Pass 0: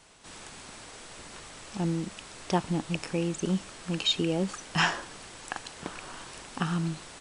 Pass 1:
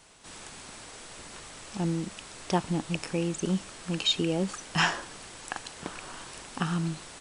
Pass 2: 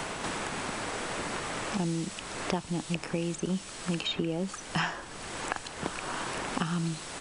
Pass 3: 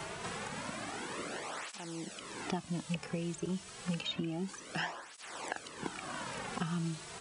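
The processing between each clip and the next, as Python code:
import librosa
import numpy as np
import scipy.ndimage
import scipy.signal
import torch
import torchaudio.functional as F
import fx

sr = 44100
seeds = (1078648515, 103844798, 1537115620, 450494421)

y1 = fx.high_shelf(x, sr, hz=9200.0, db=4.5)
y2 = fx.band_squash(y1, sr, depth_pct=100)
y2 = y2 * 10.0 ** (-1.5 / 20.0)
y3 = fx.flanger_cancel(y2, sr, hz=0.29, depth_ms=4.1)
y3 = y3 * 10.0 ** (-3.5 / 20.0)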